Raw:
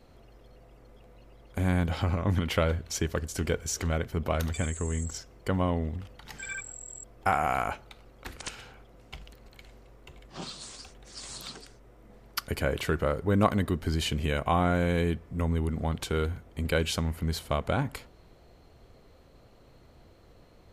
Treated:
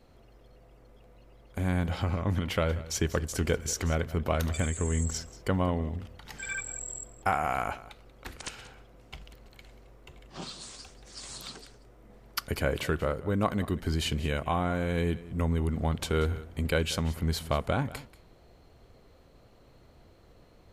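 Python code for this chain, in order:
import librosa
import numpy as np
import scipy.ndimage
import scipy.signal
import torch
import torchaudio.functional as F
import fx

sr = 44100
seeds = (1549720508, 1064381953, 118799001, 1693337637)

y = fx.rider(x, sr, range_db=5, speed_s=0.5)
y = y + 10.0 ** (-17.5 / 20.0) * np.pad(y, (int(185 * sr / 1000.0), 0))[:len(y)]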